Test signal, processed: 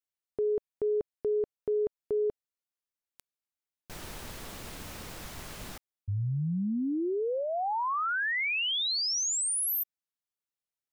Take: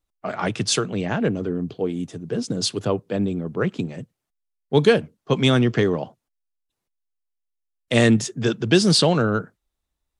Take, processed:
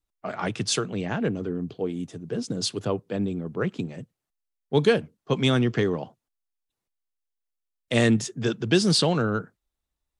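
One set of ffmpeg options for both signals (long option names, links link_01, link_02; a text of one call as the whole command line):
ffmpeg -i in.wav -af "adynamicequalizer=threshold=0.00891:dfrequency=600:dqfactor=5.2:tfrequency=600:tqfactor=5.2:attack=5:release=100:ratio=0.375:range=2:mode=cutabove:tftype=bell,volume=-4dB" out.wav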